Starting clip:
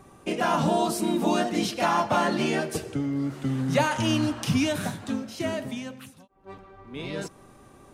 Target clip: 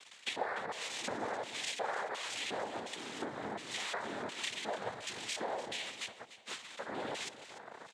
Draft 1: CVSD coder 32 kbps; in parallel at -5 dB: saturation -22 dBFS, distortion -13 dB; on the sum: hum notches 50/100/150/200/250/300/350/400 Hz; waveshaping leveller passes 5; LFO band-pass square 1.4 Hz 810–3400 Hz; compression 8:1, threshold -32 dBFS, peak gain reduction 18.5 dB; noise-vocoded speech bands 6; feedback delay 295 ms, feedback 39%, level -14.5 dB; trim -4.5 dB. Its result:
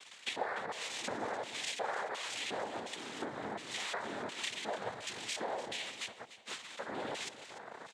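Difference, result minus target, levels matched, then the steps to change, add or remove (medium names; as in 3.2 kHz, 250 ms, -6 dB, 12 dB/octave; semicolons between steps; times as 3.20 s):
saturation: distortion +10 dB
change: saturation -14.5 dBFS, distortion -22 dB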